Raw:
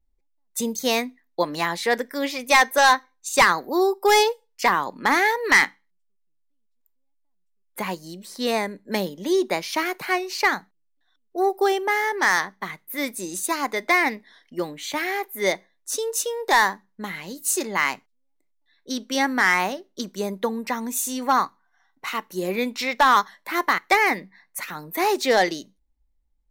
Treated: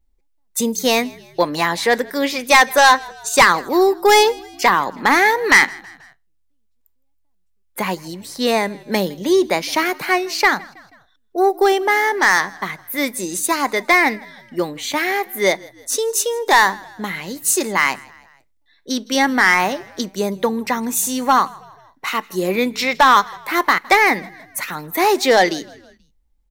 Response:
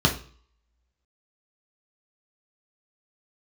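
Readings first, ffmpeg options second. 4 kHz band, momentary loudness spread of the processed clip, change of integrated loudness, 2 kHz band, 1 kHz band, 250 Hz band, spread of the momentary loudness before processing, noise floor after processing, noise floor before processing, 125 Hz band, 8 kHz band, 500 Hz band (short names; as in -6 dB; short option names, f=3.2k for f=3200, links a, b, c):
+6.0 dB, 14 LU, +5.5 dB, +5.5 dB, +5.5 dB, +6.0 dB, 14 LU, -62 dBFS, -68 dBFS, +6.5 dB, +6.0 dB, +6.0 dB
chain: -filter_complex "[0:a]acontrast=66,asplit=4[a][b][c][d];[b]adelay=161,afreqshift=-43,volume=-23.5dB[e];[c]adelay=322,afreqshift=-86,volume=-29.5dB[f];[d]adelay=483,afreqshift=-129,volume=-35.5dB[g];[a][e][f][g]amix=inputs=4:normalize=0"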